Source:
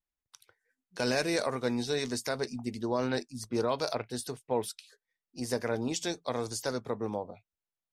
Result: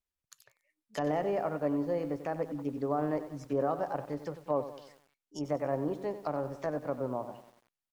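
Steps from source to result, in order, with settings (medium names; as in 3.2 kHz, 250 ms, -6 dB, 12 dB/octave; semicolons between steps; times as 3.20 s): low-pass that closes with the level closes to 860 Hz, closed at -31 dBFS; pitch shift +3 st; bit-crushed delay 94 ms, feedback 55%, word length 9-bit, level -12 dB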